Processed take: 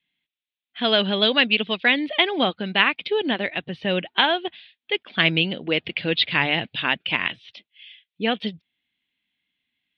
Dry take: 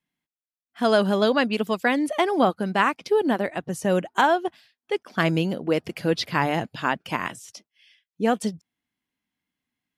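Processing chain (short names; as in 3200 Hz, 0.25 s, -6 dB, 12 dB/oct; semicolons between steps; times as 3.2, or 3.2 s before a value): elliptic low-pass 3700 Hz, stop band 50 dB; resonant high shelf 1800 Hz +12 dB, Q 1.5; gain -1 dB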